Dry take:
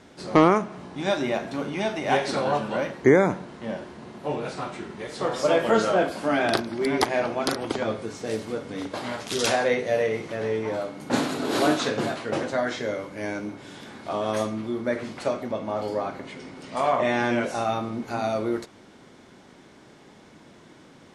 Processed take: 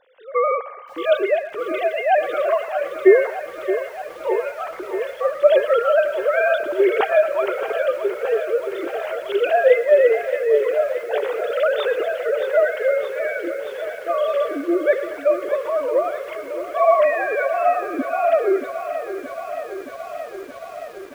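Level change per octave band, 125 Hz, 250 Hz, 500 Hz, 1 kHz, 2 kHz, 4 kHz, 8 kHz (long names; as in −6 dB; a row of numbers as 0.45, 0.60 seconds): below −25 dB, −3.0 dB, +8.0 dB, +3.5 dB, +4.5 dB, −4.5 dB, below −10 dB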